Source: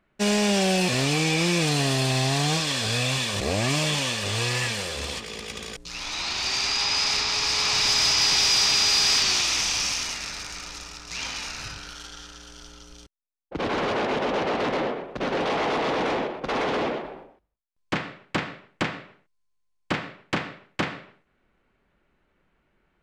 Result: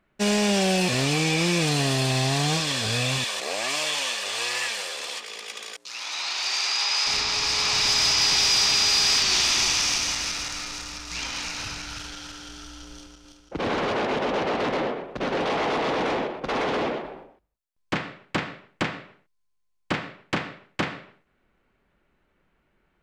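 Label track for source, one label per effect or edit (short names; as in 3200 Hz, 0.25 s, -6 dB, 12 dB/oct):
3.240000	7.070000	HPF 600 Hz
9.150000	13.740000	regenerating reverse delay 0.167 s, feedback 63%, level -4.5 dB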